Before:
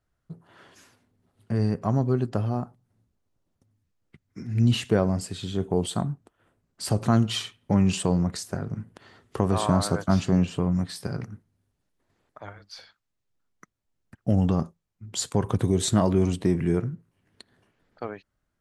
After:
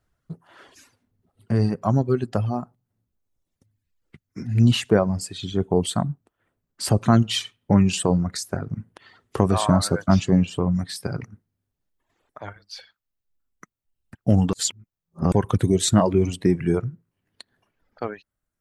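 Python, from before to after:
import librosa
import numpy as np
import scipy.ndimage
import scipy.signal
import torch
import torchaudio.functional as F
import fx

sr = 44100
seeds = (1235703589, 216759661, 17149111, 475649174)

y = fx.edit(x, sr, fx.reverse_span(start_s=14.53, length_s=0.79), tone=tone)
y = fx.dereverb_blind(y, sr, rt60_s=1.4)
y = y * librosa.db_to_amplitude(5.0)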